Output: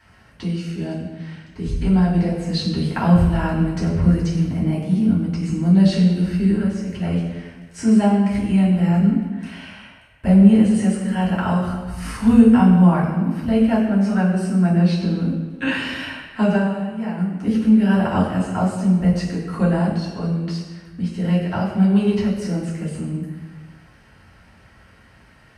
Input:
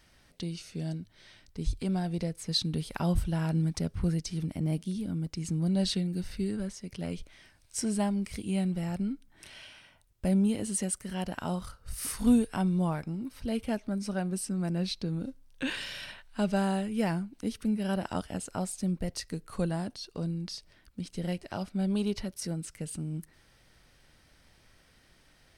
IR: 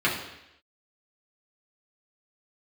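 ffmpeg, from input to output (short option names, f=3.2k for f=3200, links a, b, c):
-filter_complex "[0:a]acrossover=split=8100[a][b];[b]acompressor=threshold=-54dB:ratio=4:attack=1:release=60[c];[a][c]amix=inputs=2:normalize=0,asplit=3[d][e][f];[d]afade=t=out:st=16.55:d=0.02[g];[e]agate=range=-13dB:threshold=-24dB:ratio=16:detection=peak,afade=t=in:st=16.55:d=0.02,afade=t=out:st=17.17:d=0.02[h];[f]afade=t=in:st=17.17:d=0.02[i];[g][h][i]amix=inputs=3:normalize=0[j];[1:a]atrim=start_sample=2205,asetrate=27342,aresample=44100[k];[j][k]afir=irnorm=-1:irlink=0,volume=-5dB"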